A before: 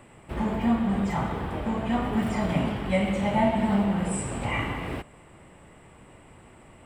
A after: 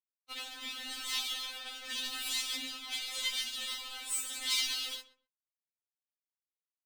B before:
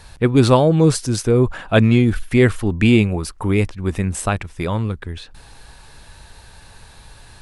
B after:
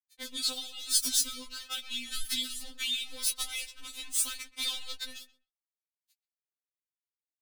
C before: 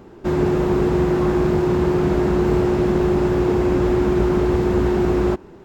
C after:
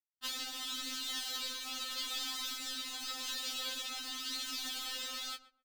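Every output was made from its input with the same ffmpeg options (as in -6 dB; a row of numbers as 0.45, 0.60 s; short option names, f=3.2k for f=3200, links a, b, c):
-filter_complex "[0:a]equalizer=f=1.3k:t=o:w=0.52:g=10.5,aeval=exprs='sgn(val(0))*max(abs(val(0))-0.0355,0)':c=same,tremolo=f=0.85:d=0.69,acompressor=threshold=-29dB:ratio=4,flanger=delay=9.1:depth=2.1:regen=24:speed=0.57:shape=triangular,crystalizer=i=9:c=0,acrossover=split=140|3000[a][b][c];[b]acompressor=threshold=-44dB:ratio=10[d];[a][d][c]amix=inputs=3:normalize=0,equalizer=f=3.6k:t=o:w=0.98:g=11.5,asplit=2[e][f];[f]adelay=128,lowpass=f=1.4k:p=1,volume=-14dB,asplit=2[g][h];[h]adelay=128,lowpass=f=1.4k:p=1,volume=0.21[i];[e][g][i]amix=inputs=3:normalize=0,afftfilt=real='re*3.46*eq(mod(b,12),0)':imag='im*3.46*eq(mod(b,12),0)':win_size=2048:overlap=0.75"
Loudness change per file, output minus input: -8.0, -14.5, -19.0 LU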